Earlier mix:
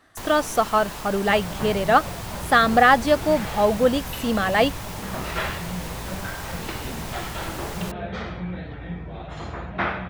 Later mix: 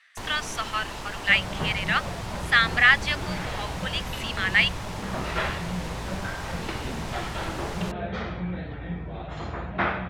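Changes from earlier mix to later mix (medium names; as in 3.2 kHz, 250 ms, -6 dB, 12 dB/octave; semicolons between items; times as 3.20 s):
speech: add resonant high-pass 2.2 kHz, resonance Q 2.9; master: add distance through air 51 m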